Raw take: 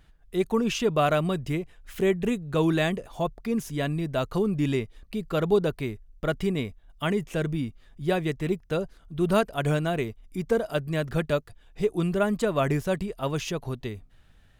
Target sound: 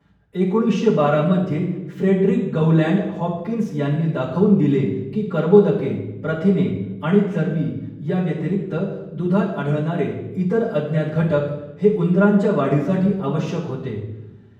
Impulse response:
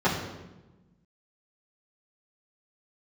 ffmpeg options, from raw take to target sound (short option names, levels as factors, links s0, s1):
-filter_complex "[0:a]asettb=1/sr,asplit=3[s0][s1][s2];[s0]atrim=end=7.404[s3];[s1]atrim=start=7.4:end=9.93,asetpts=PTS-STARTPTS,afade=t=in:d=0.004:c=qsin,afade=t=out:st=2.526:d=0.004:c=qsin,acompressor=threshold=0.0501:ratio=2[s4];[s2]atrim=start=9.926[s5];[s3][s4]acrossfade=d=0.004:c1=hsin:c2=qsin[s6];[s6][s5]acrossfade=d=0.004:c1=qsin:c2=hsin[s7];[1:a]atrim=start_sample=2205,asetrate=48510,aresample=44100[s8];[s7][s8]afir=irnorm=-1:irlink=0,volume=0.251"